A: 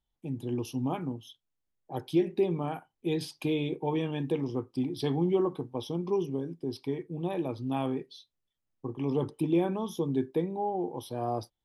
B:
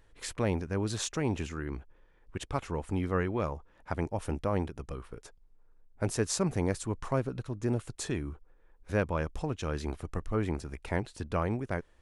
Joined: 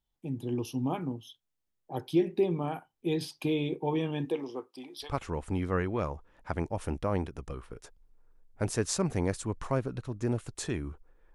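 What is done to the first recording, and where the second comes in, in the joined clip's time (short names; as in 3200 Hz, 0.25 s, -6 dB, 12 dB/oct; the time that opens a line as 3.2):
A
4.24–5.14 HPF 280 Hz -> 1000 Hz
5.07 switch to B from 2.48 s, crossfade 0.14 s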